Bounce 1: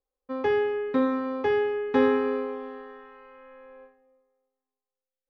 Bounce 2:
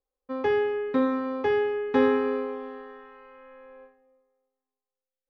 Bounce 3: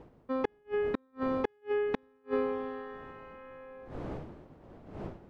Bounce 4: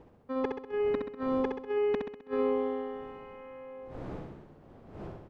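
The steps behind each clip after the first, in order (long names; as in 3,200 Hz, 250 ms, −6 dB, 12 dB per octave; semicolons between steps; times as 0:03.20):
no processing that can be heard
wind on the microphone 430 Hz −43 dBFS; gate with flip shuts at −17 dBFS, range −42 dB
repeating echo 65 ms, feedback 53%, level −4.5 dB; level −2.5 dB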